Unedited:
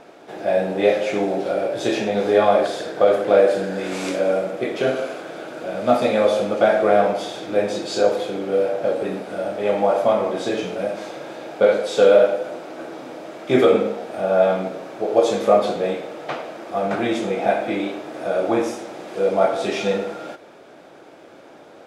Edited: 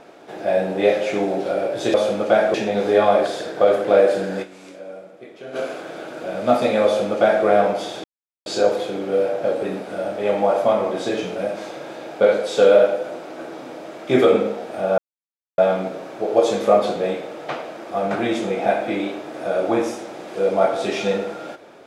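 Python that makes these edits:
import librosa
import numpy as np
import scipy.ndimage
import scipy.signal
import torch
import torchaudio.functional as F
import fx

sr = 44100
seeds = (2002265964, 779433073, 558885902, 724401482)

y = fx.edit(x, sr, fx.fade_down_up(start_s=3.82, length_s=1.14, db=-16.5, fade_s=0.17, curve='exp'),
    fx.duplicate(start_s=6.25, length_s=0.6, to_s=1.94),
    fx.silence(start_s=7.44, length_s=0.42),
    fx.insert_silence(at_s=14.38, length_s=0.6), tone=tone)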